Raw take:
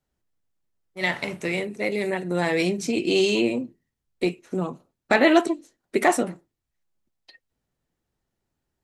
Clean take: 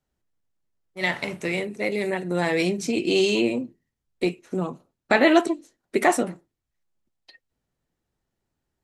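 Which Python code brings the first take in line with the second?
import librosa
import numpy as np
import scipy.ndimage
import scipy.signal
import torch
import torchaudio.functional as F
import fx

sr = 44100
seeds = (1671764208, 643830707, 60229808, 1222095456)

y = fx.fix_declip(x, sr, threshold_db=-6.5)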